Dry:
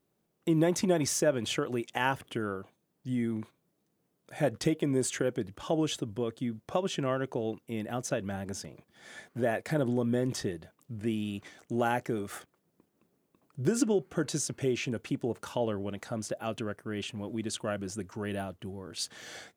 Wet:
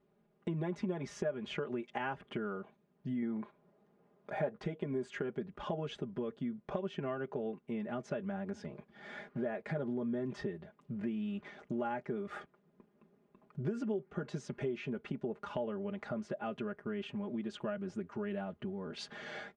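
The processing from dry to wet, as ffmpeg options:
-filter_complex "[0:a]asettb=1/sr,asplit=3[a][b][c];[a]atrim=end=3.224[d];[b]atrim=start=3.22:end=4.65,asetpts=PTS-STARTPTS,afade=t=in:d=0.004:c=qsin,afade=t=out:st=1.426:d=0.004:c=qsin,equalizer=f=760:w=0.59:g=8[e];[c]atrim=start=4.646[f];[d][e]acrossfade=d=0.004:c1=hsin:c2=qsin[g];[g][f]acrossfade=d=0.004:c1=qsin:c2=hsin,lowpass=2.2k,aecho=1:1:4.9:0.84,acompressor=threshold=-40dB:ratio=3,volume=2dB"

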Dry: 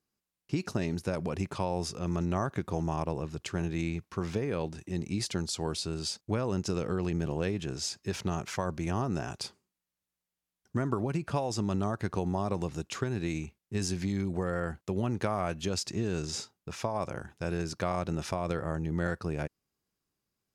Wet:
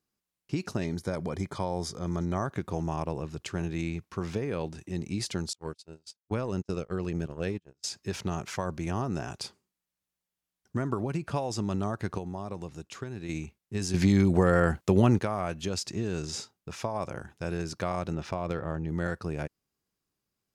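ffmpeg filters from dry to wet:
-filter_complex "[0:a]asettb=1/sr,asplit=3[a][b][c];[a]atrim=end=0.844[d];[b]atrim=start=0.84:end=2.52,asetpts=PTS-STARTPTS,afade=t=in:d=0.004:c=qsin,afade=t=out:st=1.676:d=0.004:c=qsin,asuperstop=centerf=2700:order=20:qfactor=5.8[e];[c]atrim=start=2.516[f];[d][e]acrossfade=d=0.004:c1=hsin:c2=qsin[g];[g][f]acrossfade=d=0.004:c1=qsin:c2=hsin,asettb=1/sr,asplit=3[h][i][j];[h]atrim=end=5.534[k];[i]atrim=start=5.53:end=7.84,asetpts=PTS-STARTPTS,afade=t=in:d=0.004:c=qsin,afade=t=out:st=2.306:d=0.004:c=qsin,agate=range=-42dB:threshold=-32dB:ratio=16:release=100:detection=peak[l];[j]atrim=start=7.836[m];[k][l]acrossfade=d=0.004:c1=hsin:c2=qsin[n];[n][m]acrossfade=d=0.004:c1=qsin:c2=hsin,asettb=1/sr,asplit=3[o][p][q];[o]atrim=end=18.144[r];[p]atrim=start=18.14:end=18.88,asetpts=PTS-STARTPTS,afade=t=in:d=0.004:c=qsin,afade=t=out:st=0.736:d=0.004:c=qsin,adynamicsmooth=sensitivity=5:basefreq=3.8k[s];[q]atrim=start=18.876[t];[r][s]acrossfade=d=0.004:c1=hsin:c2=qsin[u];[u][t]acrossfade=d=0.004:c1=qsin:c2=hsin,asplit=5[v][w][x][y][z];[v]atrim=end=12.182[aa];[w]atrim=start=12.178:end=13.292,asetpts=PTS-STARTPTS,volume=-6dB[ab];[x]atrim=start=13.288:end=13.942[ac];[y]atrim=start=13.938:end=15.192,asetpts=PTS-STARTPTS,volume=9.5dB[ad];[z]atrim=start=15.188[ae];[aa][ab]acrossfade=d=0.004:c1=hsin:c2=hsin[af];[af][ac]acrossfade=d=0.004:c1=hsin:c2=hsin[ag];[ag][ad]acrossfade=d=0.004:c1=hsin:c2=hsin[ah];[ah][ae]acrossfade=d=0.004:c1=hsin:c2=hsin"

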